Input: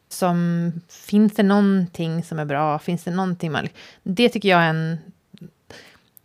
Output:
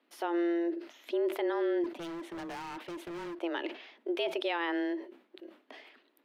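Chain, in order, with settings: frequency shift +170 Hz; resonant high shelf 4.5 kHz -12.5 dB, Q 1.5; peak limiter -14.5 dBFS, peak gain reduction 11.5 dB; 1.84–3.35 s: hard clipper -29.5 dBFS, distortion -10 dB; decay stretcher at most 140 dB/s; trim -9 dB

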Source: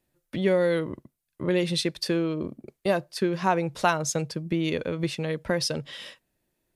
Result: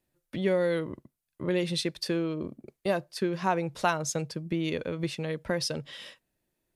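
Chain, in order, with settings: trim -3.5 dB

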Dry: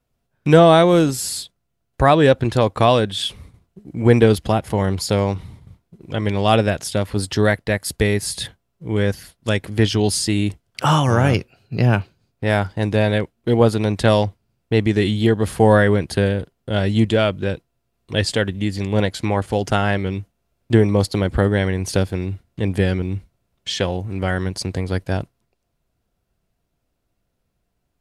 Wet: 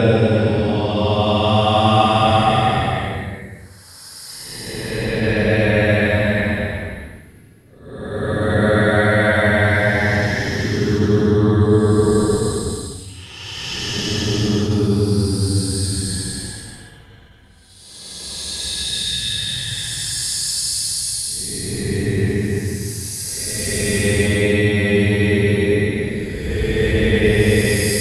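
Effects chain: slices played last to first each 102 ms, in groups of 7; peaking EQ 610 Hz -3 dB 0.53 oct; in parallel at 0 dB: peak limiter -10.5 dBFS, peak gain reduction 8.5 dB; on the sum: Paulstretch 19×, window 0.10 s, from 7.00 s; attacks held to a fixed rise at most 140 dB/s; trim -3 dB

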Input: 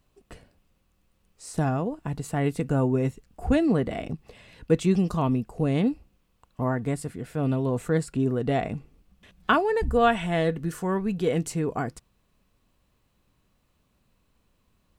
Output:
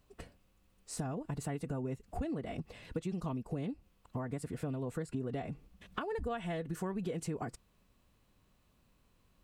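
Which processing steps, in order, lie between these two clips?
compression 16:1, threshold -33 dBFS, peak gain reduction 19 dB; time stretch by phase-locked vocoder 0.63×

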